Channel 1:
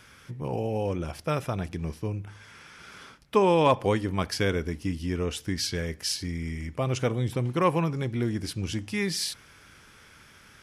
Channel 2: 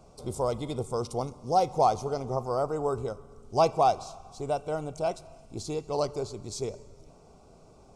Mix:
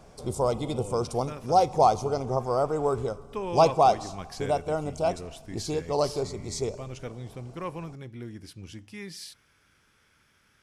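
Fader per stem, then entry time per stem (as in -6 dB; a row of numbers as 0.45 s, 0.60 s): -12.0 dB, +3.0 dB; 0.00 s, 0.00 s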